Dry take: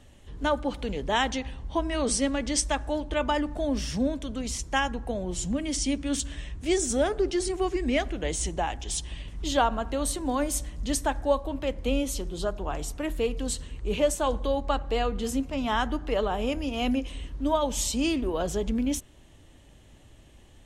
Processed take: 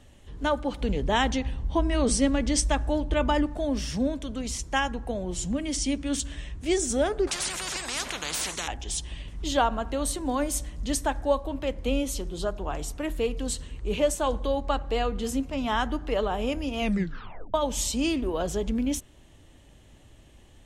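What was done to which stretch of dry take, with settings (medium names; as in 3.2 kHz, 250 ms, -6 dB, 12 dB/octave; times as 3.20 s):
0.81–3.46 s: bass shelf 290 Hz +7.5 dB
7.27–8.68 s: spectrum-flattening compressor 10:1
16.79 s: tape stop 0.75 s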